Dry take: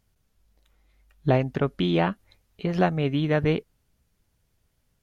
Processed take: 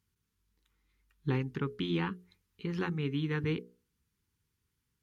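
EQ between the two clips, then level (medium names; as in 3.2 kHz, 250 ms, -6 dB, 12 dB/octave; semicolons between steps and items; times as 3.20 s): high-pass 59 Hz; Butterworth band-stop 640 Hz, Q 1.4; hum notches 60/120/180/240/300/360/420/480 Hz; -7.5 dB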